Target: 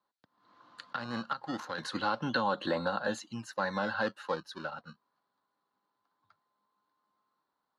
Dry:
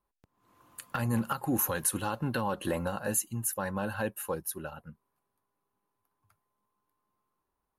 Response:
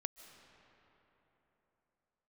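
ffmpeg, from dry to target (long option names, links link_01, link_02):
-filter_complex "[0:a]asettb=1/sr,asplit=3[link_01][link_02][link_03];[link_01]atrim=end=0.934[link_04];[link_02]atrim=start=0.93:end=1.78,asetpts=PTS-STARTPTS,afade=type=in:duration=0.004:curve=qsin,afade=type=out:start_time=0.846:duration=0.004:curve=qsin,aeval=exprs='0.168*(cos(1*acos(clip(val(0)/0.168,-1,1)))-cos(1*PI/2))+0.0376*(cos(3*acos(clip(val(0)/0.168,-1,1)))-cos(3*PI/2))':channel_layout=same[link_05];[link_03]atrim=start=1.776[link_06];[link_04][link_05]acrossfade=duration=0.004:curve1=hsin:curve2=qsin[link_07];[link_07][link_06]acrossfade=duration=0.004:curve1=qsin:curve2=hsin,acrossover=split=370|1700|2200[link_08][link_09][link_10][link_11];[link_08]acrusher=samples=22:mix=1:aa=0.000001:lfo=1:lforange=22:lforate=0.27[link_12];[link_12][link_09][link_10][link_11]amix=inputs=4:normalize=0,highpass=230,equalizer=frequency=390:width_type=q:width=4:gain=-7,equalizer=frequency=1400:width_type=q:width=4:gain=4,equalizer=frequency=2500:width_type=q:width=4:gain=-8,equalizer=frequency=4200:width_type=q:width=4:gain=8,lowpass=frequency=4700:width=0.5412,lowpass=frequency=4700:width=1.3066,volume=2.5dB"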